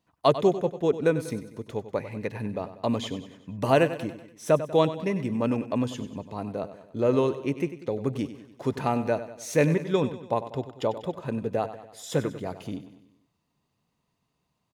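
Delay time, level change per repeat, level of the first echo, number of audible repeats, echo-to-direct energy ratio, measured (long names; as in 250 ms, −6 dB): 96 ms, −5.5 dB, −13.0 dB, 4, −11.5 dB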